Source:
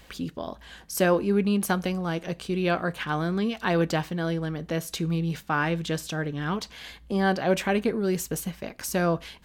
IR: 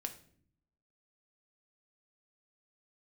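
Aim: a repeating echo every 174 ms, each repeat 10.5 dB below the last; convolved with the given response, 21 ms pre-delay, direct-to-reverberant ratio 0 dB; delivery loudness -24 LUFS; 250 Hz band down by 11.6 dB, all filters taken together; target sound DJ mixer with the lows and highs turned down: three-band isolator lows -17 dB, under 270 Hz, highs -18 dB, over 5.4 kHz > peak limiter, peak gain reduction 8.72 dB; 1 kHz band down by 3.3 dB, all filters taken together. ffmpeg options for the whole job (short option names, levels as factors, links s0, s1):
-filter_complex "[0:a]equalizer=f=250:t=o:g=-8,equalizer=f=1000:t=o:g=-4,aecho=1:1:174|348|522:0.299|0.0896|0.0269,asplit=2[s0][s1];[1:a]atrim=start_sample=2205,adelay=21[s2];[s1][s2]afir=irnorm=-1:irlink=0,volume=1.19[s3];[s0][s3]amix=inputs=2:normalize=0,acrossover=split=270 5400:gain=0.141 1 0.126[s4][s5][s6];[s4][s5][s6]amix=inputs=3:normalize=0,volume=2.37,alimiter=limit=0.237:level=0:latency=1"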